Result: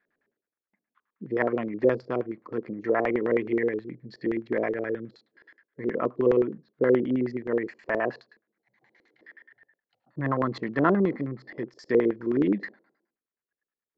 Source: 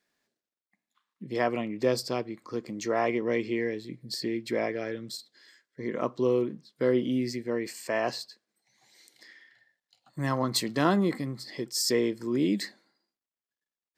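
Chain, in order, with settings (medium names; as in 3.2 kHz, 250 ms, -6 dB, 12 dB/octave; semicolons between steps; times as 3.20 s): LFO low-pass square 9.5 Hz 440–1700 Hz; resampled via 16 kHz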